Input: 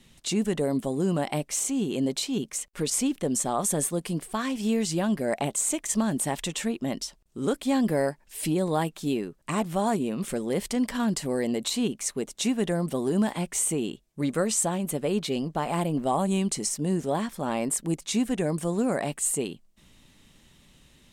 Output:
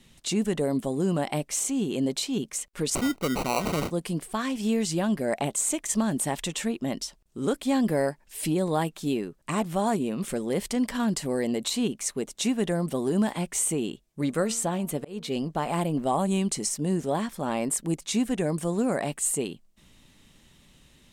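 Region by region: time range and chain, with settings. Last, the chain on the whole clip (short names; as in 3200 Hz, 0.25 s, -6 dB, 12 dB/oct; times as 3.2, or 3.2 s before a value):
2.95–3.91 high shelf 7700 Hz -3.5 dB + sample-rate reducer 1700 Hz
14.22–15.5 de-hum 231.3 Hz, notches 6 + dynamic EQ 8800 Hz, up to -5 dB, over -36 dBFS, Q 0.89 + auto swell 0.318 s
whole clip: dry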